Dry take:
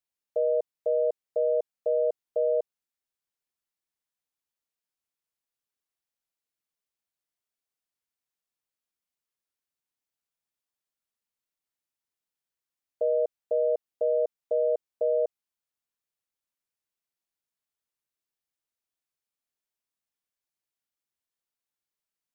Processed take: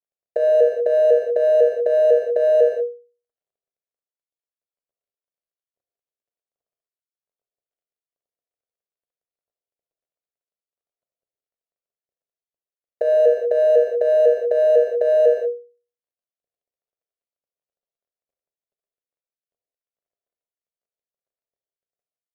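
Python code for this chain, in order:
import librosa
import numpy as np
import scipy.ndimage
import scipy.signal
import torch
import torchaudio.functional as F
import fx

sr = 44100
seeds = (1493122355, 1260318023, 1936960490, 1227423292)

y = scipy.ndimage.median_filter(x, 41, mode='constant')
y = fx.hum_notches(y, sr, base_hz=60, count=8)
y = fx.over_compress(y, sr, threshold_db=-31.0, ratio=-0.5)
y = fx.band_shelf(y, sr, hz=530.0, db=11.0, octaves=1.0)
y = fx.rev_gated(y, sr, seeds[0], gate_ms=220, shape='flat', drr_db=2.5)
y = y * librosa.db_to_amplitude(4.5)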